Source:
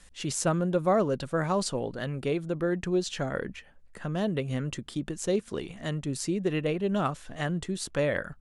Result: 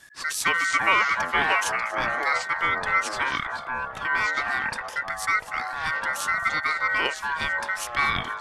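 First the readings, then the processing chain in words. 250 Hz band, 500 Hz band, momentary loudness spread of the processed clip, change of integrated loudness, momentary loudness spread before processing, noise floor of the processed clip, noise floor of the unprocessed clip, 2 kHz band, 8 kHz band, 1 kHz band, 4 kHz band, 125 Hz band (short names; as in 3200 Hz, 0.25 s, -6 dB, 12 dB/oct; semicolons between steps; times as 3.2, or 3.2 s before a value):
-12.5 dB, -7.5 dB, 8 LU, +5.5 dB, 8 LU, -38 dBFS, -54 dBFS, +17.0 dB, +3.0 dB, +11.0 dB, +8.0 dB, -12.5 dB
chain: ring modulator 1700 Hz; echoes that change speed 0.187 s, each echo -5 st, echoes 3, each echo -6 dB; thinning echo 0.237 s, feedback 42%, level -19.5 dB; gain +5.5 dB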